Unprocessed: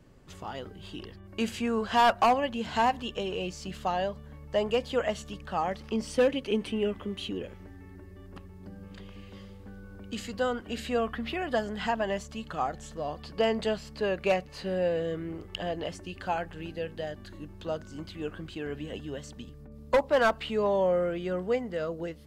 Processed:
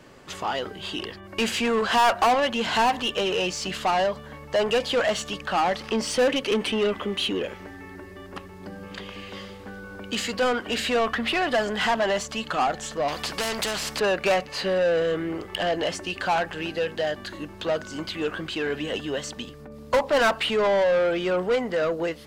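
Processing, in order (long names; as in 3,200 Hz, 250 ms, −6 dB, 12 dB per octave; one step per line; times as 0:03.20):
mid-hump overdrive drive 20 dB, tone 6,200 Hz, clips at −16.5 dBFS
0:13.08–0:14.00: every bin compressed towards the loudest bin 2 to 1
level +1.5 dB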